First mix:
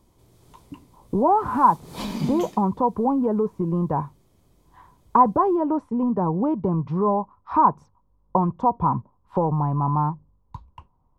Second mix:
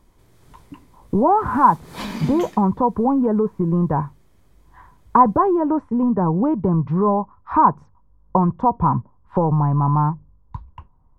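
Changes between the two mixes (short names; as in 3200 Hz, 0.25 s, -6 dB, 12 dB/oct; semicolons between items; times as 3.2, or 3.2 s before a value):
speech: add tilt -2 dB/oct; master: add bell 1700 Hz +9.5 dB 0.97 oct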